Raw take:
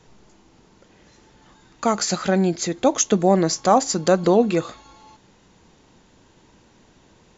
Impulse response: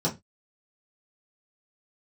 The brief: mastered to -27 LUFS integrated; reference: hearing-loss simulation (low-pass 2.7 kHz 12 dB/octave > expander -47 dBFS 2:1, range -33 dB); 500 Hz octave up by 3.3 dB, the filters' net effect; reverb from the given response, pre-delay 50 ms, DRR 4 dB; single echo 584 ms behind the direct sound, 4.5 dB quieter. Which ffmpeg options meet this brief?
-filter_complex "[0:a]equalizer=f=500:t=o:g=4,aecho=1:1:584:0.596,asplit=2[s0][s1];[1:a]atrim=start_sample=2205,adelay=50[s2];[s1][s2]afir=irnorm=-1:irlink=0,volume=0.211[s3];[s0][s3]amix=inputs=2:normalize=0,lowpass=2700,agate=range=0.0224:threshold=0.00447:ratio=2,volume=0.224"

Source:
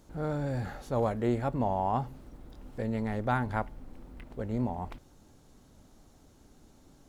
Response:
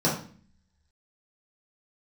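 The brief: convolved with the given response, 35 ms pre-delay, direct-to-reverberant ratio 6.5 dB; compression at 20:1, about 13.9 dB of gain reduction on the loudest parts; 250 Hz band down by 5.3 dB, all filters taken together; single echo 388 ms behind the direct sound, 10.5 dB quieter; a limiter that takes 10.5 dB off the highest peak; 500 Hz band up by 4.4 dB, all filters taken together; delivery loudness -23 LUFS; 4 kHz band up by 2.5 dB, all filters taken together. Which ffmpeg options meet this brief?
-filter_complex "[0:a]equalizer=f=250:t=o:g=-9,equalizer=f=500:t=o:g=7.5,equalizer=f=4000:t=o:g=3,acompressor=threshold=0.0178:ratio=20,alimiter=level_in=3.98:limit=0.0631:level=0:latency=1,volume=0.251,aecho=1:1:388:0.299,asplit=2[s0][s1];[1:a]atrim=start_sample=2205,adelay=35[s2];[s1][s2]afir=irnorm=-1:irlink=0,volume=0.1[s3];[s0][s3]amix=inputs=2:normalize=0,volume=10.6"

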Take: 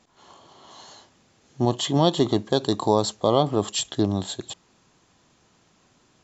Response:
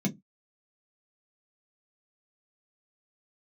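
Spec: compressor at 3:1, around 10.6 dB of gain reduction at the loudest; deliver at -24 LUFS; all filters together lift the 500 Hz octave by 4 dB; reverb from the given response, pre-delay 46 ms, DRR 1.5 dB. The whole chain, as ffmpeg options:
-filter_complex "[0:a]equalizer=f=500:t=o:g=5,acompressor=threshold=0.0501:ratio=3,asplit=2[s0][s1];[1:a]atrim=start_sample=2205,adelay=46[s2];[s1][s2]afir=irnorm=-1:irlink=0,volume=0.531[s3];[s0][s3]amix=inputs=2:normalize=0,volume=0.531"

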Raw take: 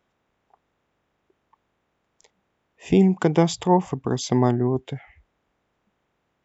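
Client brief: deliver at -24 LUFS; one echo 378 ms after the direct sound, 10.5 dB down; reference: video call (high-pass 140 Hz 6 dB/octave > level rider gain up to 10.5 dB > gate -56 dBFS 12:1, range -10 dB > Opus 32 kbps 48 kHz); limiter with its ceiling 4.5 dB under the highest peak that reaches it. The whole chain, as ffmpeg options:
-af "alimiter=limit=0.355:level=0:latency=1,highpass=f=140:p=1,aecho=1:1:378:0.299,dynaudnorm=m=3.35,agate=range=0.316:threshold=0.00158:ratio=12" -ar 48000 -c:a libopus -b:a 32k

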